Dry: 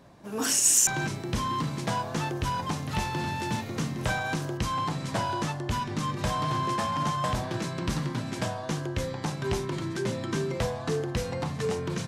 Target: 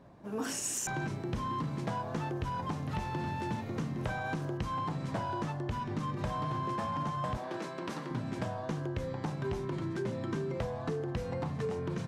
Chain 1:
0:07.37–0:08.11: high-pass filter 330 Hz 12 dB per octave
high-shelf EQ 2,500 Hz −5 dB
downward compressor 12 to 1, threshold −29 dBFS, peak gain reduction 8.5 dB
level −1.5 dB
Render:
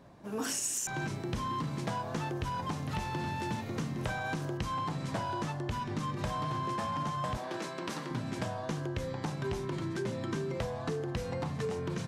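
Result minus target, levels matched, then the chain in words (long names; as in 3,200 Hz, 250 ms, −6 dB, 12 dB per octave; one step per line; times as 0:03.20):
4,000 Hz band +3.5 dB
0:07.37–0:08.11: high-pass filter 330 Hz 12 dB per octave
high-shelf EQ 2,500 Hz −12.5 dB
downward compressor 12 to 1, threshold −29 dBFS, peak gain reduction 6 dB
level −1.5 dB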